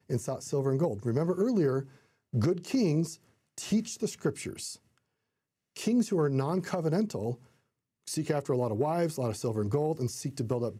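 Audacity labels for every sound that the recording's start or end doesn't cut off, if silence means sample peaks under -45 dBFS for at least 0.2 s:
2.330000	3.160000	sound
3.580000	4.760000	sound
5.760000	7.360000	sound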